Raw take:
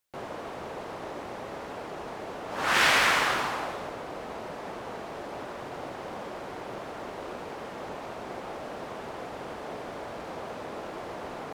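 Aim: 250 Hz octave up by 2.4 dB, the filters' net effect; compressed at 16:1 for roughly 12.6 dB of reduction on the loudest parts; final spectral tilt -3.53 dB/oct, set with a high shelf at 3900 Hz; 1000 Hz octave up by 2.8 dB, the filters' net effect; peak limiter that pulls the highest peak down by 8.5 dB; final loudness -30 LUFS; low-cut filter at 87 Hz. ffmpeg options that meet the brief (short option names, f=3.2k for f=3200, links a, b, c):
-af "highpass=87,equalizer=f=250:t=o:g=3,equalizer=f=1k:t=o:g=4,highshelf=f=3.9k:g=-8,acompressor=threshold=-30dB:ratio=16,volume=8dB,alimiter=limit=-21dB:level=0:latency=1"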